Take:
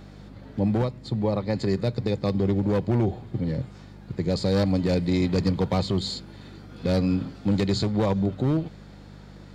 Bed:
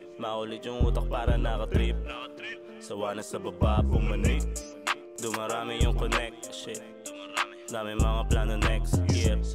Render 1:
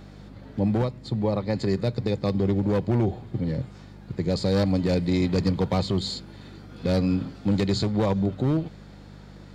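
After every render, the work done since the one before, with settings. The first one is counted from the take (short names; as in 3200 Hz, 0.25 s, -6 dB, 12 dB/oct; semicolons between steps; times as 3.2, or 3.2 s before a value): nothing audible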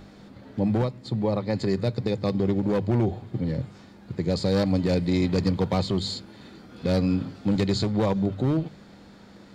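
de-hum 50 Hz, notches 3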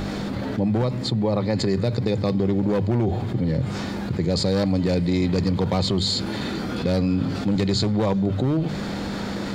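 fast leveller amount 70%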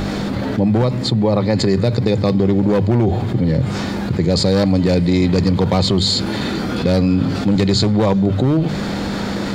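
gain +6.5 dB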